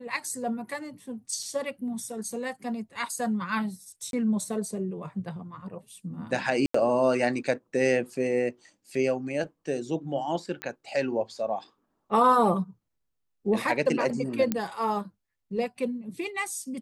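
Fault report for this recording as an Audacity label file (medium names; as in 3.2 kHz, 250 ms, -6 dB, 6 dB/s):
1.430000	1.430000	dropout 2.4 ms
4.110000	4.130000	dropout 22 ms
6.660000	6.740000	dropout 84 ms
10.620000	10.620000	pop -18 dBFS
14.520000	14.520000	pop -12 dBFS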